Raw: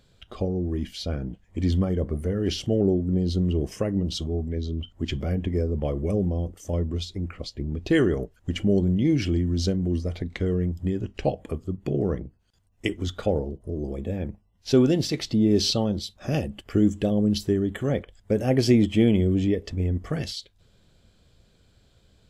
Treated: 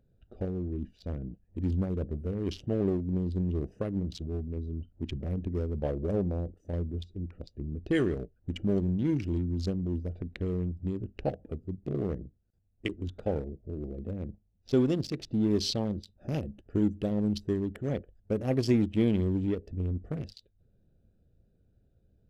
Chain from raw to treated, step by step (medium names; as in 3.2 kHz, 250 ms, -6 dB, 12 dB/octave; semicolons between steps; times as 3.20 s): local Wiener filter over 41 samples; 5.76–6.56 s: dynamic bell 620 Hz, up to +6 dB, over -39 dBFS, Q 0.9; trim -6 dB